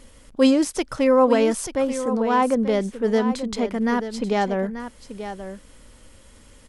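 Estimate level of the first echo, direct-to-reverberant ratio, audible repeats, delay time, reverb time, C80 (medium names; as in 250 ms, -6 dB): -11.0 dB, no reverb, 1, 885 ms, no reverb, no reverb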